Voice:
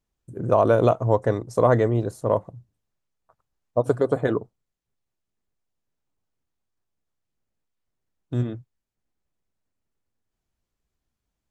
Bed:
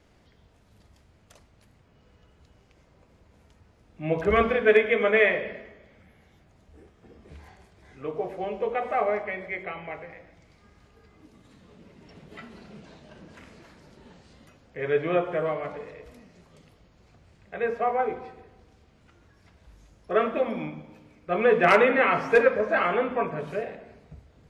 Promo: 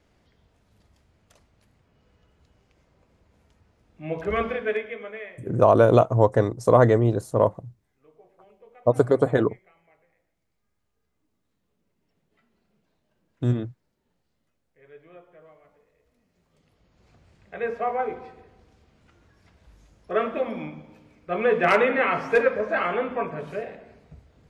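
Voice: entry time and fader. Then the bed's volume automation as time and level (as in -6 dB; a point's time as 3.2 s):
5.10 s, +2.0 dB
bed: 4.54 s -4 dB
5.5 s -24.5 dB
15.91 s -24.5 dB
17.1 s -1 dB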